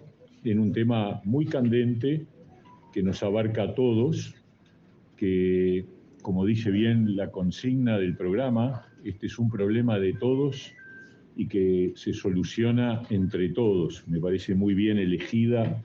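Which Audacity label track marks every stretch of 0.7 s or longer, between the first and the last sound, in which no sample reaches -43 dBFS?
4.310000	5.190000	silence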